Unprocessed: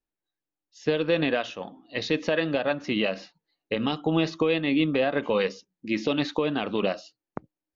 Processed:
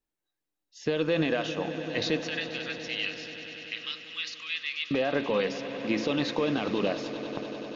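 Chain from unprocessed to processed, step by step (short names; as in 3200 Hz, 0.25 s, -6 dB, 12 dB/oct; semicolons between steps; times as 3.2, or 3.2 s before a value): 2.24–4.91 Bessel high-pass 2500 Hz, order 8; limiter -18.5 dBFS, peak gain reduction 6.5 dB; swelling echo 97 ms, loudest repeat 5, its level -16 dB; gain +1.5 dB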